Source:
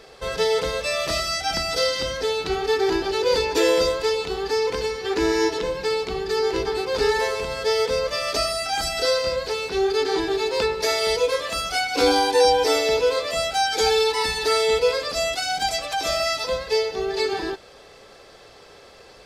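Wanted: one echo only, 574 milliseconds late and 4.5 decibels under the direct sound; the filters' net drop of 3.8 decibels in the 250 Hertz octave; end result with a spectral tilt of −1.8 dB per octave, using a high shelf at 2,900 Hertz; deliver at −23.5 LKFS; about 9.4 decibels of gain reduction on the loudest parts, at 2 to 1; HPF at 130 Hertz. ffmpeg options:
ffmpeg -i in.wav -af "highpass=130,equalizer=frequency=250:width_type=o:gain=-6,highshelf=frequency=2900:gain=-3,acompressor=threshold=-33dB:ratio=2,aecho=1:1:574:0.596,volume=6dB" out.wav

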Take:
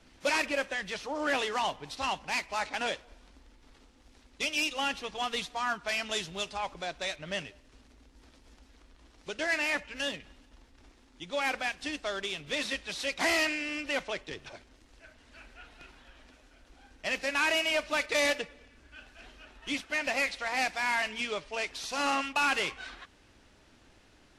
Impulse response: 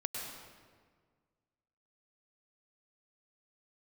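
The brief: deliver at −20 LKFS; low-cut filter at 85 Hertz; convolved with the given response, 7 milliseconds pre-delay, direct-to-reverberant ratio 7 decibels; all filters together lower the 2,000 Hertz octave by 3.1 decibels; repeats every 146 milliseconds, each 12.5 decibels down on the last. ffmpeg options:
-filter_complex "[0:a]highpass=85,equalizer=frequency=2000:width_type=o:gain=-4,aecho=1:1:146|292|438:0.237|0.0569|0.0137,asplit=2[link_01][link_02];[1:a]atrim=start_sample=2205,adelay=7[link_03];[link_02][link_03]afir=irnorm=-1:irlink=0,volume=-9dB[link_04];[link_01][link_04]amix=inputs=2:normalize=0,volume=12dB"

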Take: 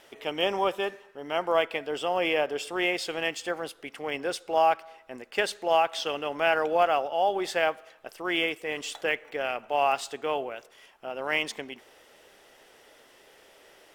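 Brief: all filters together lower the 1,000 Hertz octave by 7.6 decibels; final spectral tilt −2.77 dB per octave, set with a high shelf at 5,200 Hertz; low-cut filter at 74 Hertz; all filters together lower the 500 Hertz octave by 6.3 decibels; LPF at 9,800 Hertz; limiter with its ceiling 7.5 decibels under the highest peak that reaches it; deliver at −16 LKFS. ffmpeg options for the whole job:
ffmpeg -i in.wav -af "highpass=74,lowpass=9800,equalizer=frequency=500:width_type=o:gain=-5,equalizer=frequency=1000:width_type=o:gain=-8.5,highshelf=frequency=5200:gain=-3.5,volume=18.5dB,alimiter=limit=-2dB:level=0:latency=1" out.wav

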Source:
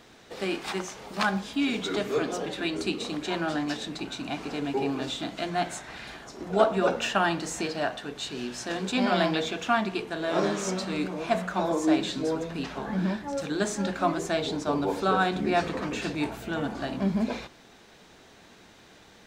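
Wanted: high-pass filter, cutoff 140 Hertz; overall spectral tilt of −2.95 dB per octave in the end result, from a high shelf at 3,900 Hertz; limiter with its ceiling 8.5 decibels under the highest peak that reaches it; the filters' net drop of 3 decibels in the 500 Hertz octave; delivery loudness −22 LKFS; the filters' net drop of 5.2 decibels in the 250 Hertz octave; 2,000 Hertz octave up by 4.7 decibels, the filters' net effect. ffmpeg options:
ffmpeg -i in.wav -af "highpass=140,equalizer=frequency=250:width_type=o:gain=-5.5,equalizer=frequency=500:width_type=o:gain=-3,equalizer=frequency=2000:width_type=o:gain=6,highshelf=frequency=3900:gain=3,volume=8.5dB,alimiter=limit=-8.5dB:level=0:latency=1" out.wav

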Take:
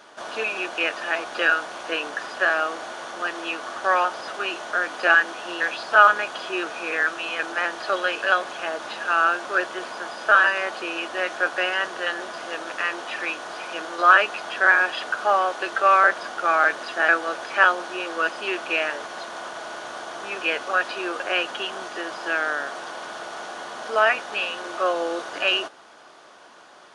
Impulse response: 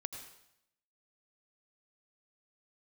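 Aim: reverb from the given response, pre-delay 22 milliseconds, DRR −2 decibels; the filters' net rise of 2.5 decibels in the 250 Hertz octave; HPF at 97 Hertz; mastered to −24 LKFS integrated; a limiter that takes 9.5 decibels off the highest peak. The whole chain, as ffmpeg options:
-filter_complex "[0:a]highpass=97,equalizer=frequency=250:width_type=o:gain=4.5,alimiter=limit=-11dB:level=0:latency=1,asplit=2[link_01][link_02];[1:a]atrim=start_sample=2205,adelay=22[link_03];[link_02][link_03]afir=irnorm=-1:irlink=0,volume=3.5dB[link_04];[link_01][link_04]amix=inputs=2:normalize=0,volume=-3.5dB"

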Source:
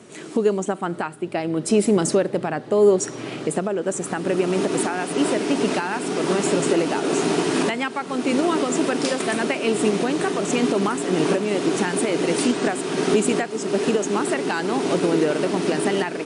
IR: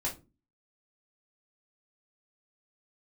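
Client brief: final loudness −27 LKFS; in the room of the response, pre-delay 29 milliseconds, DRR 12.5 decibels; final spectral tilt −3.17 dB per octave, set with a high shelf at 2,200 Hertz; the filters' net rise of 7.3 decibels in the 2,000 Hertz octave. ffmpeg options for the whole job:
-filter_complex "[0:a]equalizer=frequency=2000:width_type=o:gain=6,highshelf=frequency=2200:gain=6,asplit=2[link_01][link_02];[1:a]atrim=start_sample=2205,adelay=29[link_03];[link_02][link_03]afir=irnorm=-1:irlink=0,volume=-16dB[link_04];[link_01][link_04]amix=inputs=2:normalize=0,volume=-7.5dB"

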